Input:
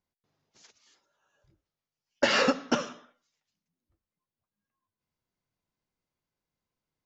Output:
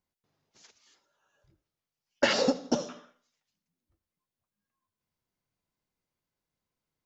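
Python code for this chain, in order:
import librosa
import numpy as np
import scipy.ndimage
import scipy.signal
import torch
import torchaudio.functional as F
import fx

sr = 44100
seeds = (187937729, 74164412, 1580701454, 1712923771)

p1 = fx.band_shelf(x, sr, hz=1800.0, db=-14.0, octaves=1.7, at=(2.33, 2.89))
y = p1 + fx.echo_feedback(p1, sr, ms=82, feedback_pct=48, wet_db=-21.0, dry=0)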